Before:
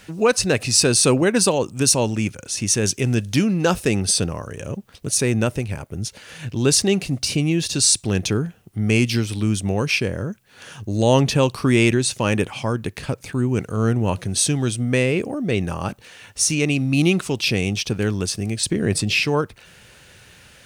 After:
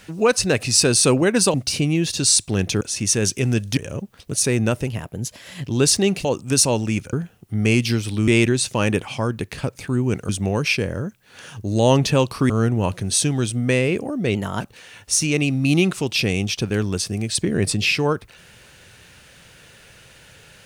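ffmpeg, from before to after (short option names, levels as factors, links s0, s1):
-filter_complex "[0:a]asplit=13[s0][s1][s2][s3][s4][s5][s6][s7][s8][s9][s10][s11][s12];[s0]atrim=end=1.542[s13];[s1]atrim=start=7.098:end=8.372[s14];[s2]atrim=start=2.418:end=3.382[s15];[s3]atrim=start=4.518:end=5.624[s16];[s4]atrim=start=5.62:end=6.51,asetpts=PTS-STARTPTS,asetrate=49833,aresample=44100[s17];[s5]atrim=start=6.506:end=7.102[s18];[s6]atrim=start=1.538:end=2.422[s19];[s7]atrim=start=8.368:end=9.522[s20];[s8]atrim=start=11.728:end=13.742[s21];[s9]atrim=start=9.518:end=11.732[s22];[s10]atrim=start=13.738:end=15.594[s23];[s11]atrim=start=15.59:end=15.89,asetpts=PTS-STARTPTS,asetrate=50715,aresample=44100,atrim=end_sample=11504,asetpts=PTS-STARTPTS[s24];[s12]atrim=start=15.886[s25];[s13][s14]acrossfade=d=0.004:c1=hsin:c2=hsin[s26];[s26][s15]acrossfade=d=0.004:c1=hsin:c2=hsin[s27];[s27][s16]acrossfade=d=0.004:c1=hsin:c2=hsin[s28];[s28][s17]acrossfade=d=0.004:c1=hsin:c2=hsin[s29];[s29][s18]acrossfade=d=0.004:c1=hsin:c2=hsin[s30];[s30][s19]acrossfade=d=0.004:c1=hsin:c2=hsin[s31];[s31][s20]acrossfade=d=0.004:c1=hsin:c2=hsin[s32];[s32][s21]acrossfade=d=0.004:c1=hsin:c2=hsin[s33];[s33][s22]acrossfade=d=0.004:c1=hsin:c2=hsin[s34];[s34][s23]acrossfade=d=0.004:c1=hsin:c2=hsin[s35];[s35][s24]acrossfade=d=0.004:c1=hsin:c2=hsin[s36];[s36][s25]acrossfade=d=0.004:c1=hsin:c2=hsin"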